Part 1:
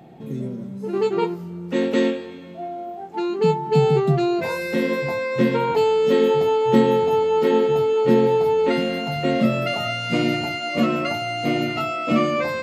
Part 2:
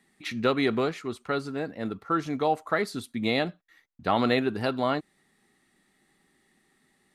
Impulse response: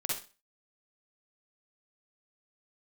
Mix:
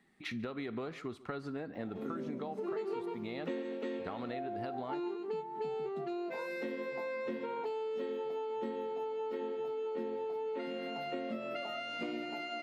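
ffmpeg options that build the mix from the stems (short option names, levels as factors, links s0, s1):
-filter_complex "[0:a]highpass=f=240:w=0.5412,highpass=f=240:w=1.3066,adelay=1750,volume=0.794,asplit=2[s0][s1];[s1]volume=0.473[s2];[1:a]acompressor=threshold=0.0355:ratio=6,volume=0.75,asplit=4[s3][s4][s5][s6];[s4]volume=0.0668[s7];[s5]volume=0.0794[s8];[s6]apad=whole_len=634103[s9];[s0][s9]sidechaingate=range=0.0224:threshold=0.00158:ratio=16:detection=peak[s10];[2:a]atrim=start_sample=2205[s11];[s7][s11]afir=irnorm=-1:irlink=0[s12];[s2][s8]amix=inputs=2:normalize=0,aecho=0:1:140:1[s13];[s10][s3][s12][s13]amix=inputs=4:normalize=0,equalizer=f=11000:w=0.37:g=-11,acompressor=threshold=0.0158:ratio=6"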